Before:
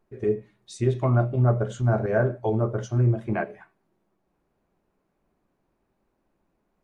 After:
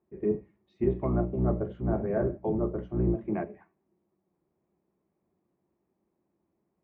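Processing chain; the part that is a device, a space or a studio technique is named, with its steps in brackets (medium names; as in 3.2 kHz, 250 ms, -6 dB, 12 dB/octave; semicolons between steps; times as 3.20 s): high-pass 46 Hz 12 dB/octave; sub-octave bass pedal (octave divider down 1 oct, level 0 dB; cabinet simulation 68–2300 Hz, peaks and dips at 110 Hz -10 dB, 190 Hz +6 dB, 350 Hz +8 dB, 1.5 kHz -8 dB); trim -7 dB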